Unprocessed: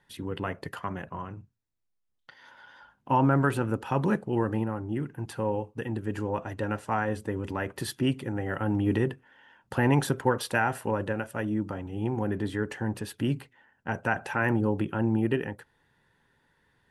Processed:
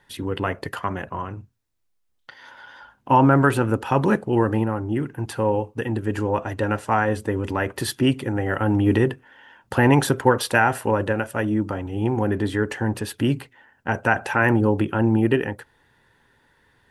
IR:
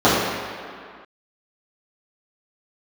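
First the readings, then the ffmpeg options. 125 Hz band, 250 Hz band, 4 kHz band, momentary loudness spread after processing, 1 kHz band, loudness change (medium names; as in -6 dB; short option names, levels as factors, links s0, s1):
+6.5 dB, +7.0 dB, +8.0 dB, 11 LU, +8.0 dB, +7.5 dB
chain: -af "equalizer=f=170:w=2.7:g=-5.5,volume=2.51"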